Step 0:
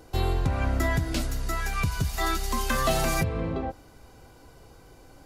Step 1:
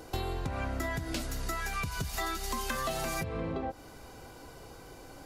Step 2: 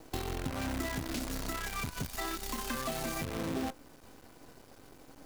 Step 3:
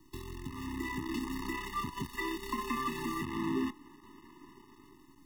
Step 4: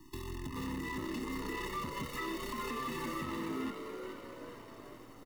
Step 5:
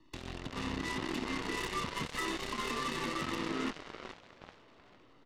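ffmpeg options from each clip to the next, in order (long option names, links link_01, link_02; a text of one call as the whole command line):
ffmpeg -i in.wav -af "lowshelf=frequency=150:gain=-6.5,acompressor=threshold=-36dB:ratio=6,volume=4.5dB" out.wav
ffmpeg -i in.wav -af "equalizer=frequency=260:width=1.8:gain=8.5,flanger=delay=6.2:depth=4.9:regen=-73:speed=0.39:shape=triangular,acrusher=bits=7:dc=4:mix=0:aa=0.000001" out.wav
ffmpeg -i in.wav -filter_complex "[0:a]acrossover=split=220|3000[link_01][link_02][link_03];[link_02]dynaudnorm=framelen=340:gausssize=5:maxgain=12dB[link_04];[link_01][link_04][link_03]amix=inputs=3:normalize=0,afftfilt=real='re*eq(mod(floor(b*sr/1024/430),2),0)':imag='im*eq(mod(floor(b*sr/1024/430),2),0)':win_size=1024:overlap=0.75,volume=-6dB" out.wav
ffmpeg -i in.wav -filter_complex "[0:a]alimiter=level_in=9.5dB:limit=-24dB:level=0:latency=1:release=113,volume=-9.5dB,asoftclip=type=tanh:threshold=-36.5dB,asplit=2[link_01][link_02];[link_02]asplit=5[link_03][link_04][link_05][link_06][link_07];[link_03]adelay=426,afreqshift=110,volume=-6.5dB[link_08];[link_04]adelay=852,afreqshift=220,volume=-14dB[link_09];[link_05]adelay=1278,afreqshift=330,volume=-21.6dB[link_10];[link_06]adelay=1704,afreqshift=440,volume=-29.1dB[link_11];[link_07]adelay=2130,afreqshift=550,volume=-36.6dB[link_12];[link_08][link_09][link_10][link_11][link_12]amix=inputs=5:normalize=0[link_13];[link_01][link_13]amix=inputs=2:normalize=0,volume=4.5dB" out.wav
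ffmpeg -i in.wav -af "lowpass=frequency=3600:width_type=q:width=1.7,flanger=delay=3.7:depth=7.9:regen=89:speed=1.9:shape=triangular,aeval=exprs='0.0266*(cos(1*acos(clip(val(0)/0.0266,-1,1)))-cos(1*PI/2))+0.00531*(cos(5*acos(clip(val(0)/0.0266,-1,1)))-cos(5*PI/2))+0.00944*(cos(7*acos(clip(val(0)/0.0266,-1,1)))-cos(7*PI/2))':channel_layout=same,volume=4.5dB" out.wav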